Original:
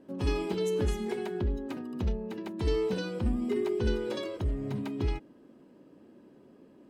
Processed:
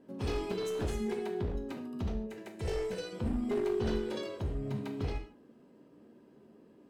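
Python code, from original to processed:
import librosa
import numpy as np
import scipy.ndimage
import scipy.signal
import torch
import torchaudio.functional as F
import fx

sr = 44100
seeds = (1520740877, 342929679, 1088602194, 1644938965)

y = np.minimum(x, 2.0 * 10.0 ** (-25.5 / 20.0) - x)
y = fx.graphic_eq(y, sr, hz=(250, 500, 1000, 2000, 4000, 8000), db=(-11, 5, -7, 3, -6, 6), at=(2.26, 3.13))
y = fx.rev_gated(y, sr, seeds[0], gate_ms=180, shape='falling', drr_db=4.0)
y = y * 10.0 ** (-4.0 / 20.0)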